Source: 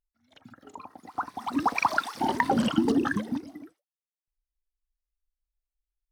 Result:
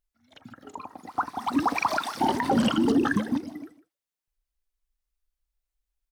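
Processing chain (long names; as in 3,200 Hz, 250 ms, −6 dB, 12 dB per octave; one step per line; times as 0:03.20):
brickwall limiter −17.5 dBFS, peak gain reduction 10 dB
on a send: single-tap delay 154 ms −17 dB
on the sum: level +4 dB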